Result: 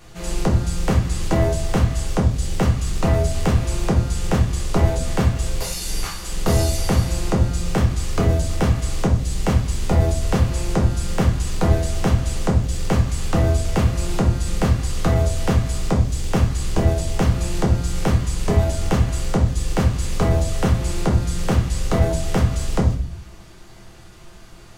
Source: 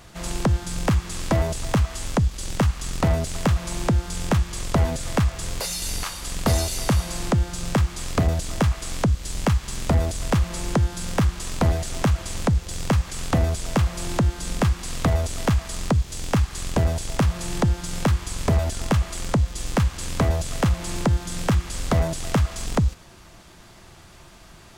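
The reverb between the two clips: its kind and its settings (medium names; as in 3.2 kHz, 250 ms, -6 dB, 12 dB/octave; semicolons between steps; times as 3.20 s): simulated room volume 43 m³, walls mixed, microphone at 0.85 m; trim -3.5 dB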